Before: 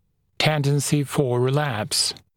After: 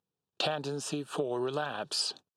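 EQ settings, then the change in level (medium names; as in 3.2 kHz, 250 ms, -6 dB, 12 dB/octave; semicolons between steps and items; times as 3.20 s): band-pass 300–6900 Hz; Butterworth band-stop 2.1 kHz, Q 2.8; -8.5 dB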